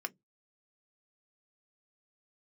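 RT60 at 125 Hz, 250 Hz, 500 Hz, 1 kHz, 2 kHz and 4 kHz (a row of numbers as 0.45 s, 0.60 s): 0.25 s, 0.25 s, 0.15 s, 0.10 s, 0.10 s, 0.10 s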